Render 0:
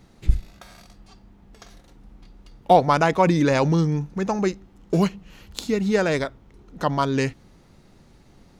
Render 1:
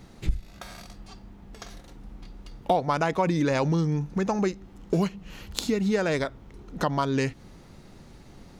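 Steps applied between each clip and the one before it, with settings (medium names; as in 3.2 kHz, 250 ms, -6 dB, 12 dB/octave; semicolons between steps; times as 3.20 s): compression 3:1, threshold -28 dBFS, peak gain reduction 14 dB; trim +4 dB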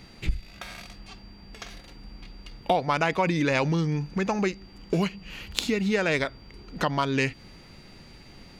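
peaking EQ 2.5 kHz +9.5 dB 1.1 oct; whistle 4.7 kHz -54 dBFS; trim -1 dB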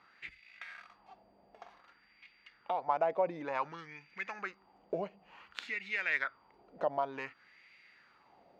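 wah-wah 0.55 Hz 610–2200 Hz, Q 3.7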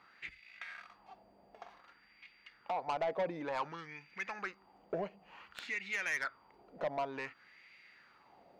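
saturation -30 dBFS, distortion -9 dB; trim +1 dB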